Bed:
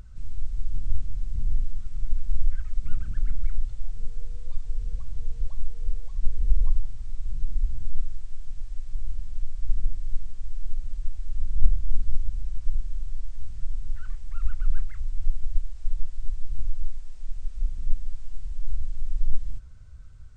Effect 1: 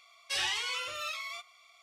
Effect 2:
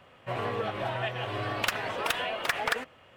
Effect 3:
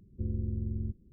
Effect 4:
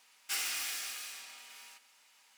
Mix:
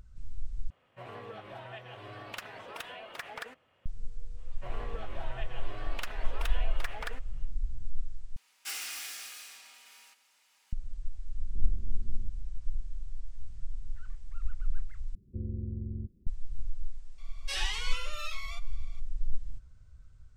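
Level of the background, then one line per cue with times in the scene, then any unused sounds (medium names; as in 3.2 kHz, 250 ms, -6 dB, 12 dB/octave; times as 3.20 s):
bed -8 dB
0.70 s: replace with 2 -13 dB
4.35 s: add 2 -11.5 dB, fades 0.05 s
8.36 s: replace with 4 -3 dB
11.36 s: add 3 -10 dB + peak limiter -32.5 dBFS
15.15 s: replace with 3 -3 dB
17.18 s: add 1 -3 dB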